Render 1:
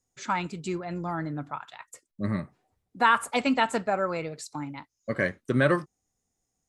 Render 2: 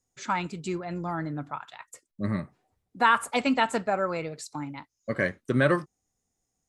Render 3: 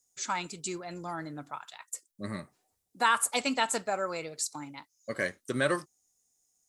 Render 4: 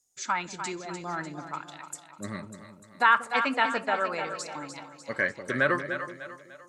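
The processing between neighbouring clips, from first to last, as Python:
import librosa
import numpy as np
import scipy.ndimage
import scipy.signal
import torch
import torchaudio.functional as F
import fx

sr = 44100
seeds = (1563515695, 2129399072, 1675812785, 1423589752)

y1 = x
y2 = fx.bass_treble(y1, sr, bass_db=-7, treble_db=15)
y2 = F.gain(torch.from_numpy(y2), -4.5).numpy()
y3 = fx.env_lowpass_down(y2, sr, base_hz=2900.0, full_db=-27.5)
y3 = fx.echo_split(y3, sr, split_hz=560.0, low_ms=189, high_ms=298, feedback_pct=52, wet_db=-8)
y3 = fx.dynamic_eq(y3, sr, hz=1600.0, q=1.0, threshold_db=-45.0, ratio=4.0, max_db=7)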